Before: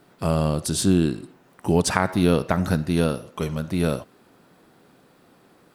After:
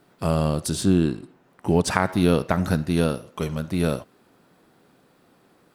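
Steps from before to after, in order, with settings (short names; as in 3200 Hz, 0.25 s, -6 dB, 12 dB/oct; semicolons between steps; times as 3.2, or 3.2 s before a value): 0.75–1.88 high shelf 4000 Hz -6 dB; in parallel at -7.5 dB: crossover distortion -37.5 dBFS; on the sum: gain -3 dB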